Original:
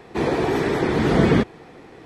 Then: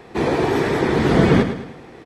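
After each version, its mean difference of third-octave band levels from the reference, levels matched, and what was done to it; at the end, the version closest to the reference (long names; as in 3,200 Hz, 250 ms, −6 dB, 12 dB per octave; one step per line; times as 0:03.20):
2.0 dB: repeating echo 106 ms, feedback 43%, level −9.5 dB
level +2 dB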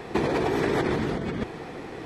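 6.5 dB: compressor whose output falls as the input rises −26 dBFS, ratio −1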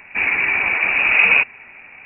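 13.0 dB: voice inversion scrambler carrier 2,700 Hz
level +2.5 dB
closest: first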